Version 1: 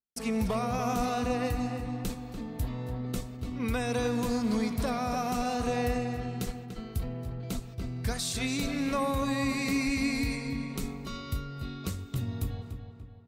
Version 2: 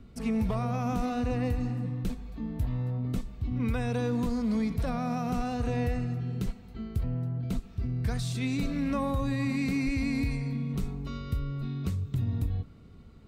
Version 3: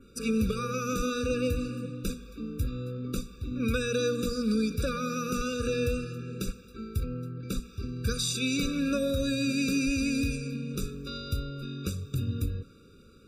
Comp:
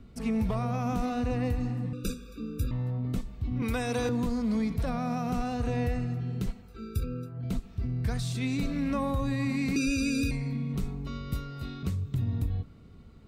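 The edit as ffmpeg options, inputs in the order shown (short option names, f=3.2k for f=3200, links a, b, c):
-filter_complex "[2:a]asplit=3[a][b][c];[0:a]asplit=2[d][e];[1:a]asplit=6[f][g][h][i][j][k];[f]atrim=end=1.932[l];[a]atrim=start=1.928:end=2.712[m];[g]atrim=start=2.708:end=3.622[n];[d]atrim=start=3.618:end=4.092[o];[h]atrim=start=4.088:end=6.84[p];[b]atrim=start=6.6:end=7.46[q];[i]atrim=start=7.22:end=9.762[r];[c]atrim=start=9.758:end=10.312[s];[j]atrim=start=10.308:end=11.332[t];[e]atrim=start=11.328:end=11.832[u];[k]atrim=start=11.828[v];[l][m]acrossfade=d=0.004:c1=hsin:c2=hsin[w];[w][n]acrossfade=d=0.004:c1=hsin:c2=hsin[x];[x][o]acrossfade=d=0.004:c1=hsin:c2=hsin[y];[y][p]acrossfade=d=0.004:c1=hsin:c2=hsin[z];[z][q]acrossfade=d=0.24:c1=tri:c2=tri[aa];[aa][r]acrossfade=d=0.24:c1=tri:c2=tri[ab];[ab][s]acrossfade=d=0.004:c1=hsin:c2=hsin[ac];[ac][t]acrossfade=d=0.004:c1=hsin:c2=hsin[ad];[ad][u]acrossfade=d=0.004:c1=hsin:c2=hsin[ae];[ae][v]acrossfade=d=0.004:c1=hsin:c2=hsin"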